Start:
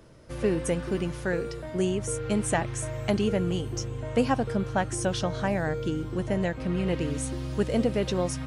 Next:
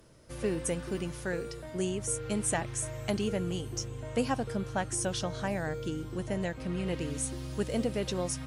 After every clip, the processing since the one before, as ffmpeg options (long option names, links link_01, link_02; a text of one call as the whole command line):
ffmpeg -i in.wav -af "aemphasis=mode=production:type=cd,volume=-5.5dB" out.wav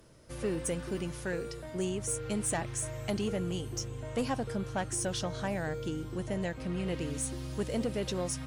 ffmpeg -i in.wav -af "asoftclip=type=tanh:threshold=-23.5dB" out.wav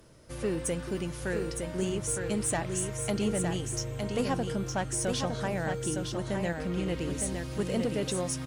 ffmpeg -i in.wav -af "aecho=1:1:911:0.562,volume=2dB" out.wav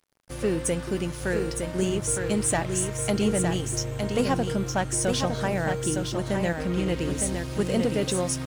ffmpeg -i in.wav -af "aeval=exprs='sgn(val(0))*max(abs(val(0))-0.00335,0)':channel_layout=same,volume=6dB" out.wav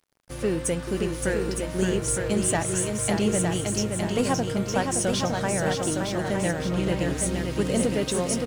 ffmpeg -i in.wav -af "aecho=1:1:569:0.562" out.wav